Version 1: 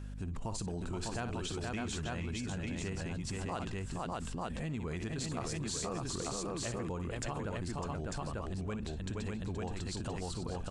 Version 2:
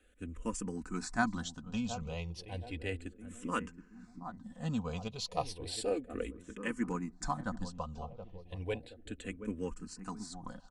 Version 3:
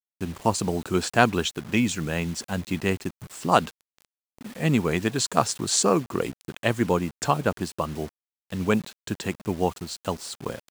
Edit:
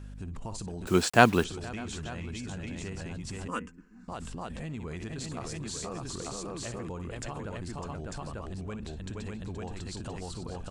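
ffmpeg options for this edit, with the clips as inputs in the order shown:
-filter_complex "[0:a]asplit=3[a][b][c];[a]atrim=end=0.872[d];[2:a]atrim=start=0.868:end=1.442[e];[b]atrim=start=1.438:end=3.482[f];[1:a]atrim=start=3.478:end=4.082[g];[c]atrim=start=4.078[h];[d][e]acrossfade=d=0.004:c1=hsin:c2=hsin[i];[i][f]acrossfade=d=0.004:c1=hsin:c2=hsin[j];[j][g]acrossfade=d=0.004:c1=hsin:c2=hsin[k];[k][h]acrossfade=d=0.004:c1=hsin:c2=hsin"

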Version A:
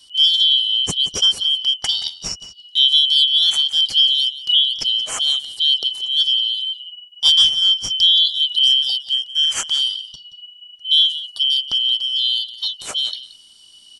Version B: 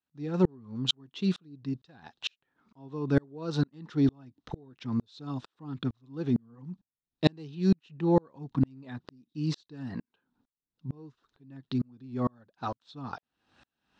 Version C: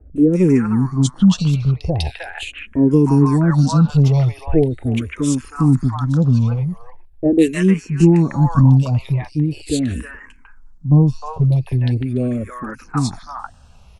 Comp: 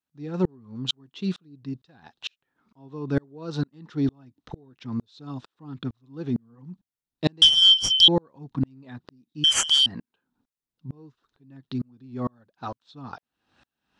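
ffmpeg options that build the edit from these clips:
-filter_complex "[0:a]asplit=2[a][b];[1:a]asplit=3[c][d][e];[c]atrim=end=7.422[f];[a]atrim=start=7.418:end=8.082[g];[d]atrim=start=8.078:end=9.442[h];[b]atrim=start=9.438:end=9.862[i];[e]atrim=start=9.858[j];[f][g]acrossfade=d=0.004:c1=hsin:c2=hsin[k];[k][h]acrossfade=d=0.004:c1=hsin:c2=hsin[l];[l][i]acrossfade=d=0.004:c1=hsin:c2=hsin[m];[m][j]acrossfade=d=0.004:c1=hsin:c2=hsin"

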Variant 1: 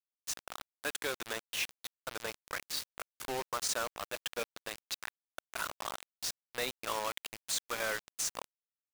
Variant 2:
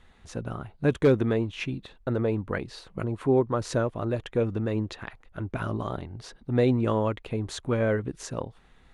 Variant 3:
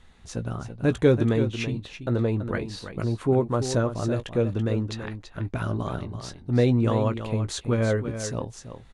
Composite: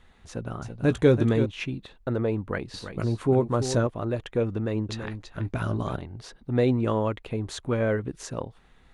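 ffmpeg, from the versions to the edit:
-filter_complex "[2:a]asplit=3[a][b][c];[1:a]asplit=4[d][e][f][g];[d]atrim=end=0.622[h];[a]atrim=start=0.618:end=1.462[i];[e]atrim=start=1.458:end=2.742[j];[b]atrim=start=2.738:end=3.872[k];[f]atrim=start=3.868:end=4.892[l];[c]atrim=start=4.888:end=5.962[m];[g]atrim=start=5.958[n];[h][i]acrossfade=d=0.004:c1=hsin:c2=hsin[o];[o][j]acrossfade=d=0.004:c1=hsin:c2=hsin[p];[p][k]acrossfade=d=0.004:c1=hsin:c2=hsin[q];[q][l]acrossfade=d=0.004:c1=hsin:c2=hsin[r];[r][m]acrossfade=d=0.004:c1=hsin:c2=hsin[s];[s][n]acrossfade=d=0.004:c1=hsin:c2=hsin"

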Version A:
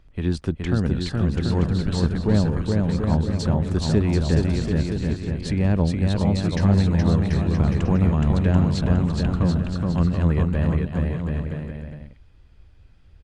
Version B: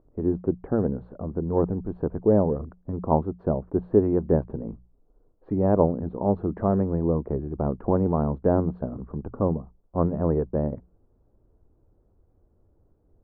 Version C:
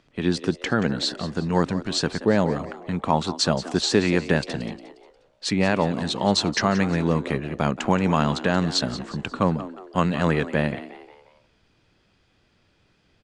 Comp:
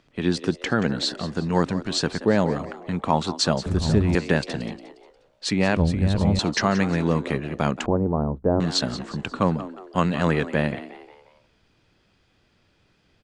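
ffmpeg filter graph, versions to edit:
-filter_complex "[0:a]asplit=2[a][b];[2:a]asplit=4[c][d][e][f];[c]atrim=end=3.662[g];[a]atrim=start=3.658:end=4.152[h];[d]atrim=start=4.148:end=5.772[i];[b]atrim=start=5.768:end=6.392[j];[e]atrim=start=6.388:end=7.862[k];[1:a]atrim=start=7.858:end=8.602[l];[f]atrim=start=8.598[m];[g][h]acrossfade=d=0.004:c1=hsin:c2=hsin[n];[n][i]acrossfade=d=0.004:c1=hsin:c2=hsin[o];[o][j]acrossfade=d=0.004:c1=hsin:c2=hsin[p];[p][k]acrossfade=d=0.004:c1=hsin:c2=hsin[q];[q][l]acrossfade=d=0.004:c1=hsin:c2=hsin[r];[r][m]acrossfade=d=0.004:c1=hsin:c2=hsin"

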